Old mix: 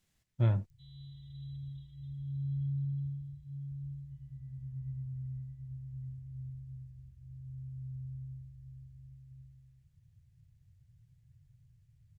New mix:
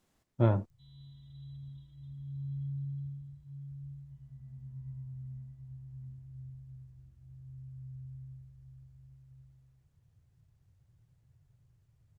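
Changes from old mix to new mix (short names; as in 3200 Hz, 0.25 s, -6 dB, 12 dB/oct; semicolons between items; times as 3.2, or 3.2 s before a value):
background -3.5 dB; master: add band shelf 550 Hz +10 dB 2.9 oct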